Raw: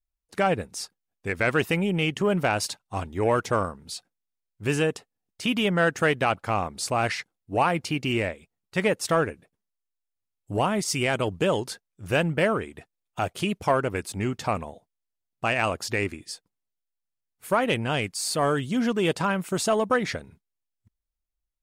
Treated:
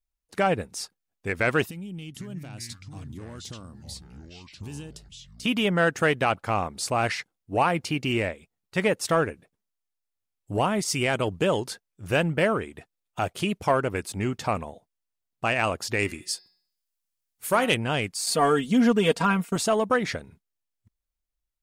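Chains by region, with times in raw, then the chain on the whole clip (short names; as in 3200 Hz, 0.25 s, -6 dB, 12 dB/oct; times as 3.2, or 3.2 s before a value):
1.66–5.45 compressor 2.5:1, threshold -37 dBFS + band shelf 1000 Hz -12 dB 3 oct + echoes that change speed 0.484 s, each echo -5 st, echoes 2, each echo -6 dB
15.99–17.75 high shelf 3000 Hz +9 dB + de-hum 184.8 Hz, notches 28
18.26–19.56 expander -34 dBFS + comb 4.3 ms, depth 83%
whole clip: dry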